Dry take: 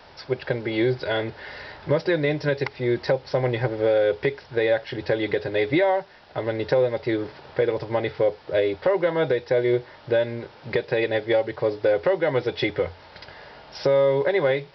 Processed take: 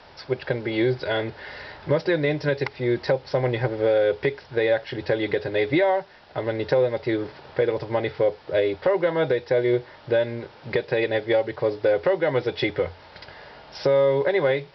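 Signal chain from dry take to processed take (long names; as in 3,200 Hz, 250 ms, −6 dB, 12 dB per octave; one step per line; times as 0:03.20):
low-pass filter 7,900 Hz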